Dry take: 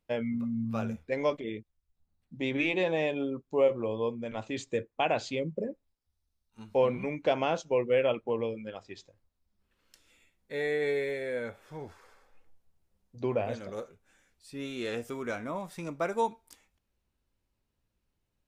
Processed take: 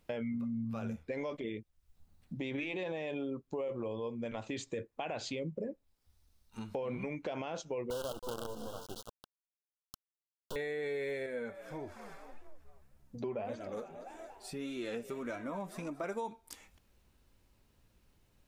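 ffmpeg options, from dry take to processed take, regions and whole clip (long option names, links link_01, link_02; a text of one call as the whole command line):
ffmpeg -i in.wav -filter_complex "[0:a]asettb=1/sr,asplit=3[link_01][link_02][link_03];[link_01]atrim=end=7.904[link_04];[link_02]atrim=start=7.9:end=10.56,asetpts=PTS-STARTPTS,afade=type=in:duration=0.004:curve=qsin,afade=type=out:start_time=2.656:duration=0.004:curve=qsin,asplit=2[link_05][link_06];[link_06]adelay=325,lowpass=frequency=1500:poles=1,volume=-15dB,asplit=2[link_07][link_08];[link_08]adelay=325,lowpass=frequency=1500:poles=1,volume=0.27,asplit=2[link_09][link_10];[link_10]adelay=325,lowpass=frequency=1500:poles=1,volume=0.27[link_11];[link_05][link_07][link_09][link_11]amix=inputs=4:normalize=0,atrim=end_sample=117306,acrusher=bits=5:dc=4:mix=0:aa=0.000001,asuperstop=centerf=2100:order=12:qfactor=1.6[link_12];[link_03]atrim=start=10.556[link_13];[link_04][link_12]acrossfade=duration=0.004:curve1=hsin:curve2=qsin[link_14];[link_14][link_13]acrossfade=duration=0.004:curve1=qsin:curve2=hsin,asettb=1/sr,asplit=3[link_15][link_16][link_17];[link_15]atrim=end=11.264[link_18];[link_16]atrim=start=11.26:end=16.04,asetpts=PTS-STARTPTS,afade=type=in:duration=0.004:curve=qsin,afade=type=out:start_time=4.776:duration=0.004:curve=qsin,equalizer=frequency=3900:width_type=o:width=2.1:gain=-3,asplit=5[link_19][link_20][link_21][link_22][link_23];[link_20]adelay=233,afreqshift=67,volume=-17.5dB[link_24];[link_21]adelay=466,afreqshift=134,volume=-23.2dB[link_25];[link_22]adelay=699,afreqshift=201,volume=-28.9dB[link_26];[link_23]adelay=932,afreqshift=268,volume=-34.5dB[link_27];[link_19][link_24][link_25][link_26][link_27]amix=inputs=5:normalize=0,atrim=end_sample=210798,flanger=delay=3:depth=2.2:regen=22:speed=1.7:shape=sinusoidal[link_28];[link_17]atrim=start=16.036[link_29];[link_18][link_28]acrossfade=duration=0.004:curve1=hsin:curve2=qsin[link_30];[link_30][link_29]acrossfade=duration=0.004:curve1=qsin:curve2=hsin,alimiter=level_in=1.5dB:limit=-24dB:level=0:latency=1:release=45,volume=-1.5dB,acompressor=threshold=-55dB:ratio=2.5,volume=11.5dB" out.wav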